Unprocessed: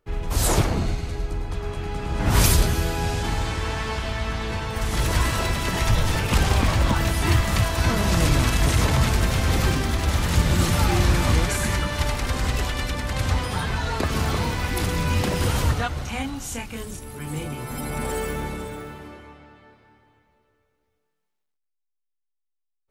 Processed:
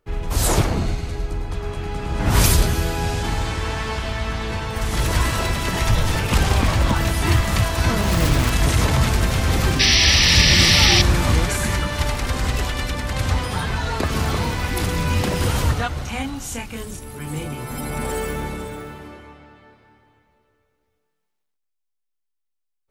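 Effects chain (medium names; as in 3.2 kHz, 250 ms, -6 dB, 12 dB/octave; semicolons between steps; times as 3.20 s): 8.01–8.50 s: self-modulated delay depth 0.23 ms; 9.79–11.02 s: painted sound noise 1.7–6 kHz -18 dBFS; trim +2 dB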